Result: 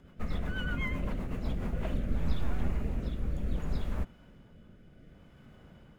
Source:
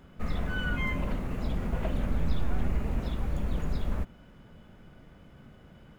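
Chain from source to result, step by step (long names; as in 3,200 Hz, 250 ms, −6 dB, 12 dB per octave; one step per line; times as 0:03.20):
rotating-speaker cabinet horn 8 Hz, later 0.65 Hz, at 0:01.29
level −1 dB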